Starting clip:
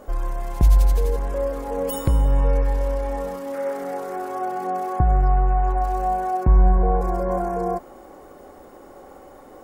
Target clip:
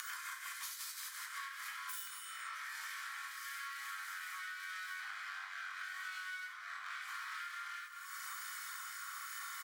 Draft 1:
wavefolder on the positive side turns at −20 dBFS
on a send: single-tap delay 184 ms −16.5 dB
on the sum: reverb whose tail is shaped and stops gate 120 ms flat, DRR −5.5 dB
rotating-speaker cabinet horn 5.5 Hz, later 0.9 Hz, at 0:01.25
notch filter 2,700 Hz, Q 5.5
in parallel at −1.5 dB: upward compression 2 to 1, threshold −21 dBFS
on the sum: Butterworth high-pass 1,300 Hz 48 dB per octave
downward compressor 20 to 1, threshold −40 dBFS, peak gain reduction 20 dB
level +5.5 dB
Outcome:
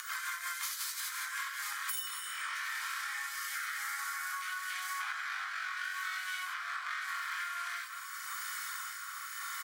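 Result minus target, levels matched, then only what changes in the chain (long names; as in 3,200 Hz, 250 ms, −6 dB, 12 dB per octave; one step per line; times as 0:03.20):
downward compressor: peak gain reduction −8.5 dB; wavefolder on the positive side: distortion −10 dB
change: wavefolder on the positive side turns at −28.5 dBFS
change: downward compressor 20 to 1, threshold −47.5 dBFS, peak gain reduction 28.5 dB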